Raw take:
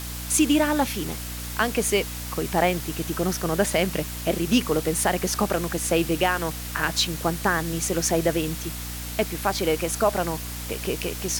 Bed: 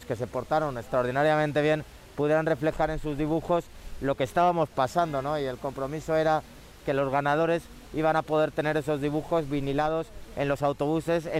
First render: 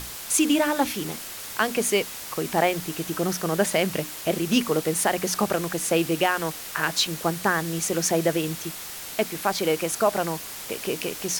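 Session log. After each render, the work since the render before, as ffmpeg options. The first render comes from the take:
-af "bandreject=f=60:t=h:w=6,bandreject=f=120:t=h:w=6,bandreject=f=180:t=h:w=6,bandreject=f=240:t=h:w=6,bandreject=f=300:t=h:w=6"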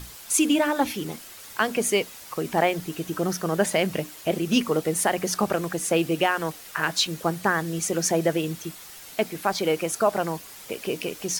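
-af "afftdn=nr=8:nf=-37"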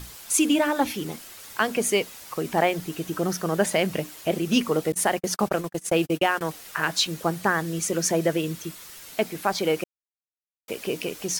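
-filter_complex "[0:a]asettb=1/sr,asplit=3[a][b][c];[a]atrim=end=4.924[d];[b]atrim=start=4.92:end=6.41,asetpts=PTS-STARTPTS,afade=t=in:d=0.004:c=qsin,afade=t=out:st=1.486:d=0.004:c=qsin,agate=range=-53dB:threshold=-29dB:ratio=16:release=100:detection=peak[e];[c]atrim=start=6.406[f];[d][e]acrossfade=d=0.004:c1=hsin:c2=qsin[g];[g][f]acrossfade=d=0.004:c1=qsin:c2=hsin,asettb=1/sr,asplit=3[h][i][j];[h]atrim=end=7.664[k];[i]atrim=start=7.66:end=9.13,asetpts=PTS-STARTPTS,afade=t=in:d=0.004:c=qsin,afade=t=out:st=1.466:d=0.004:c=qsin,bandreject=f=770:w=6.3[l];[j]atrim=start=9.126[m];[k][l]acrossfade=d=0.004:c1=hsin:c2=qsin[n];[n][m]acrossfade=d=0.004:c1=qsin:c2=hsin,asplit=3[o][p][q];[o]atrim=end=9.84,asetpts=PTS-STARTPTS,afade=t=out:st=9.836:d=0.004:c=hsin[r];[p]atrim=start=9.84:end=10.68,asetpts=PTS-STARTPTS,volume=0[s];[q]atrim=start=10.68,asetpts=PTS-STARTPTS,afade=t=in:d=0.004:c=hsin[t];[r][s][t]concat=n=3:v=0:a=1"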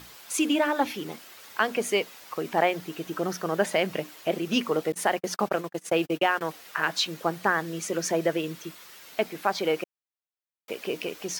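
-af "highpass=f=340:p=1,equalizer=f=10k:w=0.59:g=-9.5"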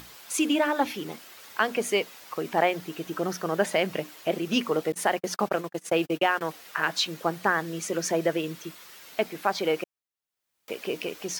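-af "acompressor=mode=upward:threshold=-46dB:ratio=2.5"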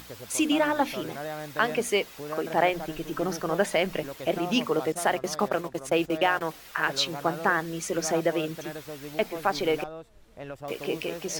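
-filter_complex "[1:a]volume=-12.5dB[a];[0:a][a]amix=inputs=2:normalize=0"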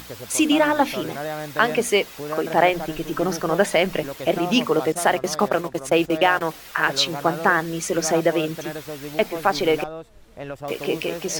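-af "volume=6dB"

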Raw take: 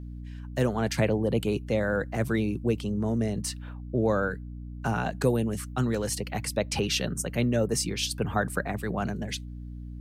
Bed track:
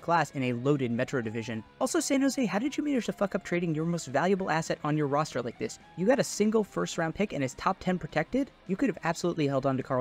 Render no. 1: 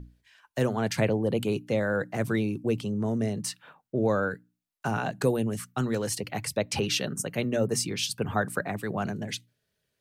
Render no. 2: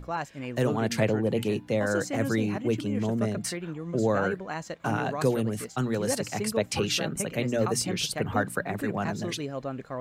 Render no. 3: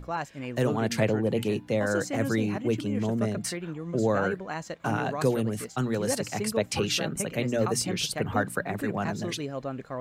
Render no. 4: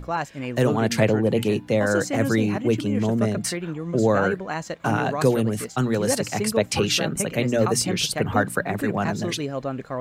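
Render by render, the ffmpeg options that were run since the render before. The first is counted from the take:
-af "bandreject=f=60:t=h:w=6,bandreject=f=120:t=h:w=6,bandreject=f=180:t=h:w=6,bandreject=f=240:t=h:w=6,bandreject=f=300:t=h:w=6"
-filter_complex "[1:a]volume=-6.5dB[a];[0:a][a]amix=inputs=2:normalize=0"
-af anull
-af "volume=5.5dB"

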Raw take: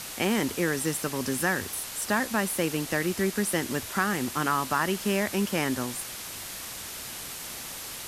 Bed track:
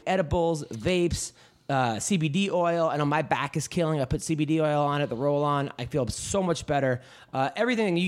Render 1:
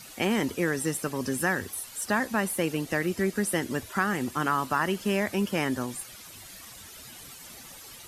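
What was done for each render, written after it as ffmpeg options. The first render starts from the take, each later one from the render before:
-af "afftdn=nr=12:nf=-39"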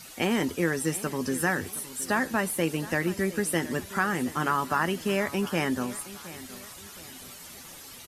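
-filter_complex "[0:a]asplit=2[a][b];[b]adelay=12,volume=-11dB[c];[a][c]amix=inputs=2:normalize=0,aecho=1:1:718|1436|2154|2872:0.141|0.0607|0.0261|0.0112"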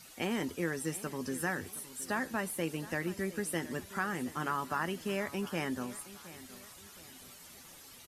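-af "volume=-8dB"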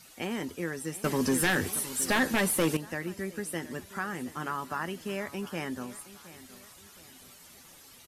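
-filter_complex "[0:a]asettb=1/sr,asplit=3[a][b][c];[a]atrim=end=1.044[d];[b]atrim=start=1.04:end=2.77,asetpts=PTS-STARTPTS,afade=t=in:d=0.004:c=qsin,afade=t=out:st=1.726:d=0.004:c=qsin,aeval=exprs='0.106*sin(PI/2*2.51*val(0)/0.106)':c=same[e];[c]atrim=start=2.766[f];[d][e]acrossfade=d=0.004:c1=hsin:c2=qsin[g];[g][f]acrossfade=d=0.004:c1=qsin:c2=hsin"

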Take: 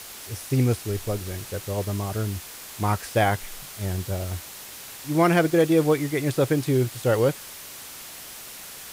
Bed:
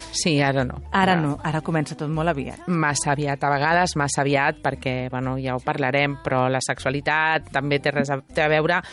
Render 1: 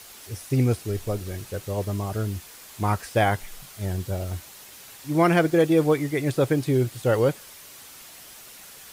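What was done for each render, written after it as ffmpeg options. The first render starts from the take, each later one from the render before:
-af "afftdn=nr=6:nf=-41"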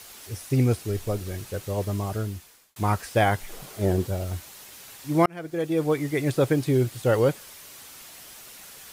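-filter_complex "[0:a]asettb=1/sr,asplit=3[a][b][c];[a]atrim=end=3.494[d];[b]atrim=start=3.49:end=4.07,asetpts=PTS-STARTPTS,afade=t=in:d=0.004:c=qsin,afade=t=out:st=0.576:d=0.004:c=qsin,equalizer=f=410:w=0.65:g=13[e];[c]atrim=start=4.066[f];[d][e]acrossfade=d=0.004:c1=hsin:c2=qsin[g];[g][f]acrossfade=d=0.004:c1=qsin:c2=hsin,asplit=3[h][i][j];[h]atrim=end=2.76,asetpts=PTS-STARTPTS,afade=t=out:st=2.09:d=0.67[k];[i]atrim=start=2.76:end=5.26,asetpts=PTS-STARTPTS,afade=t=in:d=0.004:c=hsin,afade=t=out:st=2.496:d=0.004:c=hsin[l];[j]atrim=start=5.26,asetpts=PTS-STARTPTS,afade=t=in:d=0.91[m];[k][l][m]concat=n=3:v=0:a=1"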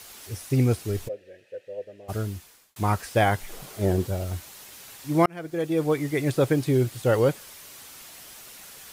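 -filter_complex "[0:a]asplit=3[a][b][c];[a]afade=t=out:st=1.07:d=0.02[d];[b]asplit=3[e][f][g];[e]bandpass=f=530:t=q:w=8,volume=0dB[h];[f]bandpass=f=1.84k:t=q:w=8,volume=-6dB[i];[g]bandpass=f=2.48k:t=q:w=8,volume=-9dB[j];[h][i][j]amix=inputs=3:normalize=0,afade=t=in:st=1.07:d=0.02,afade=t=out:st=2.08:d=0.02[k];[c]afade=t=in:st=2.08:d=0.02[l];[d][k][l]amix=inputs=3:normalize=0"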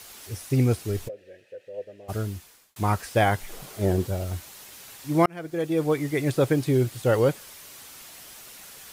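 -filter_complex "[0:a]asettb=1/sr,asplit=3[a][b][c];[a]atrim=end=1.104[d];[b]atrim=start=1.1:end=1.74,asetpts=PTS-STARTPTS,afade=t=in:d=0.004:c=qsin,afade=t=out:st=0.636:d=0.004:c=qsin,acompressor=threshold=-38dB:ratio=2:attack=3.2:release=140:knee=1:detection=peak[e];[c]atrim=start=1.736[f];[d][e]acrossfade=d=0.004:c1=hsin:c2=qsin[g];[g][f]acrossfade=d=0.004:c1=qsin:c2=hsin"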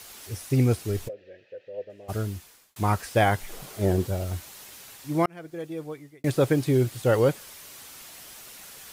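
-filter_complex "[0:a]asettb=1/sr,asplit=3[a][b][c];[a]atrim=end=1.134[d];[b]atrim=start=1.13:end=1.9,asetpts=PTS-STARTPTS,afade=t=in:d=0.004:c=qsin,afade=t=out:st=0.766:d=0.004:c=qsin,lowpass=f=5k:w=0.5412,lowpass=f=5k:w=1.3066[e];[c]atrim=start=1.896[f];[d][e]acrossfade=d=0.004:c1=hsin:c2=qsin[g];[g][f]acrossfade=d=0.004:c1=qsin:c2=hsin,asplit=2[h][i];[h]atrim=end=6.24,asetpts=PTS-STARTPTS,afade=t=out:st=4.69:d=1.55[j];[i]atrim=start=6.24,asetpts=PTS-STARTPTS,afade=t=in:d=0.004:c=hsin[k];[j][k]concat=n=2:v=0:a=1"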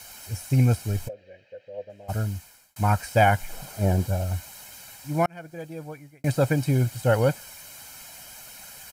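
-af "bandreject=f=3.5k:w=5.6,aecho=1:1:1.3:0.64"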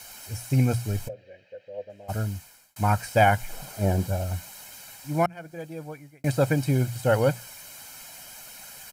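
-af "equalizer=f=63:t=o:w=0.77:g=-6.5,bandreject=f=60:t=h:w=6,bandreject=f=120:t=h:w=6,bandreject=f=180:t=h:w=6"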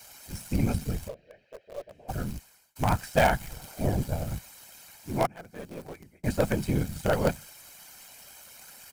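-filter_complex "[0:a]afftfilt=real='hypot(re,im)*cos(2*PI*random(0))':imag='hypot(re,im)*sin(2*PI*random(1))':win_size=512:overlap=0.75,asplit=2[a][b];[b]acrusher=bits=4:dc=4:mix=0:aa=0.000001,volume=-6dB[c];[a][c]amix=inputs=2:normalize=0"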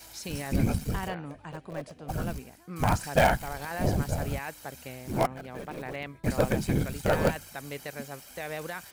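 -filter_complex "[1:a]volume=-17.5dB[a];[0:a][a]amix=inputs=2:normalize=0"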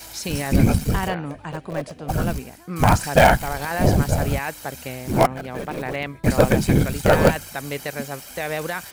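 -af "volume=9.5dB,alimiter=limit=-1dB:level=0:latency=1"

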